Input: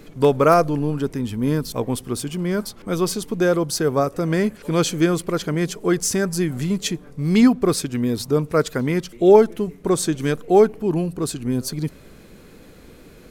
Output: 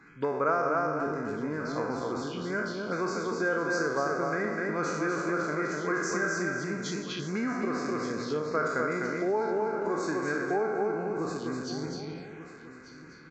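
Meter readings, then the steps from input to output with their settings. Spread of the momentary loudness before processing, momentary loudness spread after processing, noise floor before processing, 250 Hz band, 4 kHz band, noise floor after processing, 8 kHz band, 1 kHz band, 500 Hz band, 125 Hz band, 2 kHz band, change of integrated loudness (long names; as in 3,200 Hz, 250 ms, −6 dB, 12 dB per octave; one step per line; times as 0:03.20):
10 LU, 7 LU, −46 dBFS, −12.0 dB, −12.5 dB, −48 dBFS, −14.0 dB, −6.0 dB, −10.5 dB, −15.0 dB, 0.0 dB, −10.0 dB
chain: peak hold with a decay on every bin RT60 0.86 s
downsampling to 16,000 Hz
Butterworth band-reject 1,800 Hz, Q 8
high-shelf EQ 4,200 Hz −12 dB
repeating echo 251 ms, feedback 32%, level −4 dB
phaser swept by the level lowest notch 500 Hz, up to 3,200 Hz, full sweep at −17 dBFS
downward compressor, threshold −17 dBFS, peak gain reduction 10.5 dB
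high-pass filter 370 Hz 6 dB per octave
parametric band 1,700 Hz +14.5 dB 0.74 octaves
single-tap delay 1,190 ms −15 dB
level −7 dB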